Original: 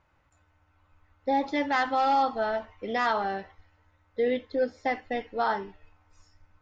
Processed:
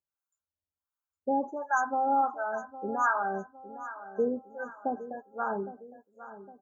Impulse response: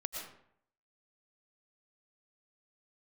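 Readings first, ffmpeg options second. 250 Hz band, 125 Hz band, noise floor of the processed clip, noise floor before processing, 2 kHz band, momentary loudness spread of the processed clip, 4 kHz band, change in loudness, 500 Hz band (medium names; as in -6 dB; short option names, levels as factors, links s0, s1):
-3.0 dB, no reading, under -85 dBFS, -68 dBFS, -2.0 dB, 18 LU, under -40 dB, -3.0 dB, -4.0 dB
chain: -filter_complex "[0:a]highpass=53,aemphasis=mode=production:type=75fm,afftfilt=real='re*(1-between(b*sr/4096,1700,6000))':imag='im*(1-between(b*sr/4096,1700,6000))':win_size=4096:overlap=0.75,afftdn=nr=31:nf=-36,highshelf=f=5400:g=11,aecho=1:1:5:0.43,acrossover=split=730[s0][s1];[s0]aeval=exprs='val(0)*(1-1/2+1/2*cos(2*PI*1.4*n/s))':c=same[s2];[s1]aeval=exprs='val(0)*(1-1/2-1/2*cos(2*PI*1.4*n/s))':c=same[s3];[s2][s3]amix=inputs=2:normalize=0,aecho=1:1:810|1620|2430|3240:0.188|0.0848|0.0381|0.0172,volume=1.26"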